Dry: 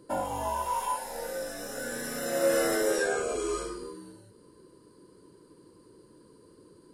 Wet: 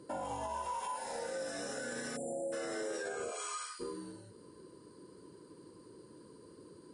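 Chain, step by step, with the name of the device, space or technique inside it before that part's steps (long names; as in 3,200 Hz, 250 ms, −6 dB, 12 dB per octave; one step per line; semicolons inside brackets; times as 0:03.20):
0:02.16–0:02.52: time-frequency box erased 880–7,200 Hz
0:03.30–0:03.79: high-pass filter 540 Hz → 1,500 Hz 24 dB per octave
podcast mastering chain (high-pass filter 71 Hz; downward compressor 3 to 1, threshold −36 dBFS, peak gain reduction 11.5 dB; brickwall limiter −31 dBFS, peak gain reduction 6 dB; level +1 dB; MP3 96 kbit/s 22,050 Hz)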